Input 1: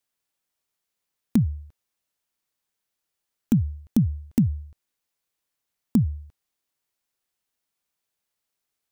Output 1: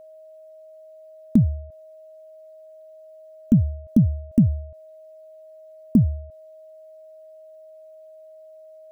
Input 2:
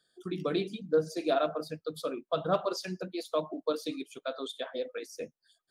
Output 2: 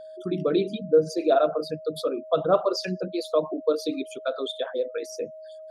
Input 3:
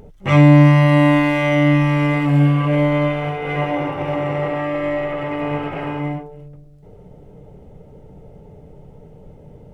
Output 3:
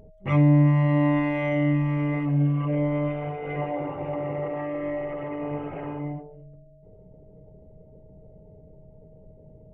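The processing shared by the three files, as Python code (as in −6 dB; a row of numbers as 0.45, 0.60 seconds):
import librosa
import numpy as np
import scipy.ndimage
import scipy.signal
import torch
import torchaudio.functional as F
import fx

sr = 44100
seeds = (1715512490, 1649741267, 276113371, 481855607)

y = fx.envelope_sharpen(x, sr, power=1.5)
y = y + 10.0 ** (-47.0 / 20.0) * np.sin(2.0 * np.pi * 630.0 * np.arange(len(y)) / sr)
y = y * 10.0 ** (-26 / 20.0) / np.sqrt(np.mean(np.square(y)))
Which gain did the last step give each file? +4.0, +7.5, −8.0 decibels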